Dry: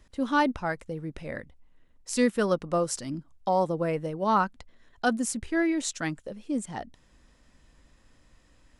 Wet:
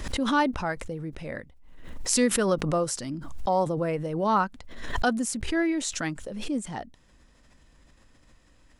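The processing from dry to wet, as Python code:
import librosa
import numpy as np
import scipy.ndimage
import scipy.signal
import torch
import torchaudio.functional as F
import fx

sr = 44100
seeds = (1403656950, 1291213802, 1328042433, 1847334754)

y = fx.pre_swell(x, sr, db_per_s=48.0)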